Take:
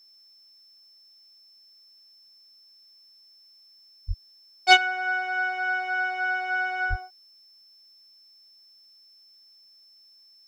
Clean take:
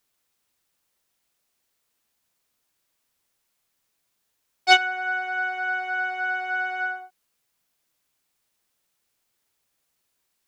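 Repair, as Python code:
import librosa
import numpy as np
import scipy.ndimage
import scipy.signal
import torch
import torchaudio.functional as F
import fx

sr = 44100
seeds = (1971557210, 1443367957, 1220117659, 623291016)

y = fx.notch(x, sr, hz=5300.0, q=30.0)
y = fx.fix_deplosive(y, sr, at_s=(4.07, 6.89))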